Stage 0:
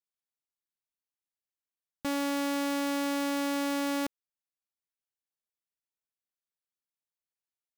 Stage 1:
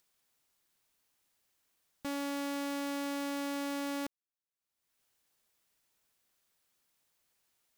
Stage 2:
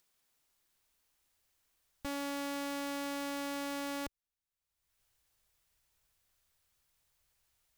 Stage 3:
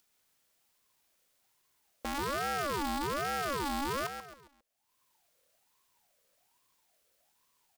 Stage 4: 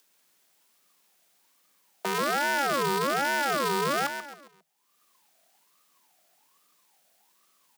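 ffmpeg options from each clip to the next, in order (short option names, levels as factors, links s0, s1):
-af "acompressor=mode=upward:threshold=0.00251:ratio=2.5,volume=0.501"
-af "asubboost=boost=8:cutoff=85"
-filter_complex "[0:a]asplit=2[s0][s1];[s1]aecho=0:1:135|270|405|540:0.422|0.164|0.0641|0.025[s2];[s0][s2]amix=inputs=2:normalize=0,aeval=exprs='val(0)*sin(2*PI*790*n/s+790*0.35/1.2*sin(2*PI*1.2*n/s))':c=same,volume=1.88"
-af "afreqshift=150,volume=2.24"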